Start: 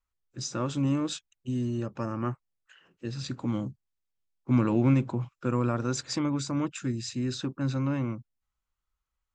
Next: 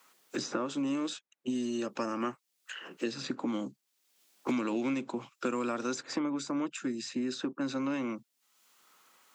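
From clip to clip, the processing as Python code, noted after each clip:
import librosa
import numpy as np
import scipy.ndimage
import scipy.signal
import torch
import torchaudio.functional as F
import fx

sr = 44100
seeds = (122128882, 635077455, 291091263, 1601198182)

y = scipy.signal.sosfilt(scipy.signal.butter(4, 230.0, 'highpass', fs=sr, output='sos'), x)
y = fx.band_squash(y, sr, depth_pct=100)
y = F.gain(torch.from_numpy(y), -2.0).numpy()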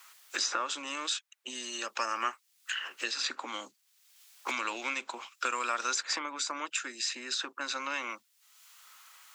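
y = scipy.signal.sosfilt(scipy.signal.butter(2, 1200.0, 'highpass', fs=sr, output='sos'), x)
y = F.gain(torch.from_numpy(y), 9.0).numpy()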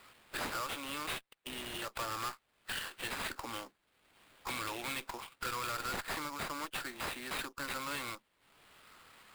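y = fx.high_shelf(x, sr, hz=8100.0, db=-8.0)
y = fx.tube_stage(y, sr, drive_db=34.0, bias=0.5)
y = fx.sample_hold(y, sr, seeds[0], rate_hz=6100.0, jitter_pct=20)
y = F.gain(torch.from_numpy(y), 1.0).numpy()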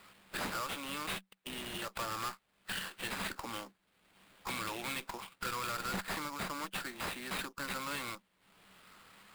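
y = fx.peak_eq(x, sr, hz=190.0, db=13.5, octaves=0.21)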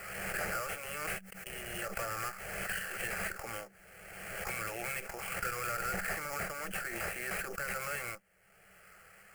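y = fx.fixed_phaser(x, sr, hz=1000.0, stages=6)
y = fx.pre_swell(y, sr, db_per_s=32.0)
y = F.gain(torch.from_numpy(y), 4.0).numpy()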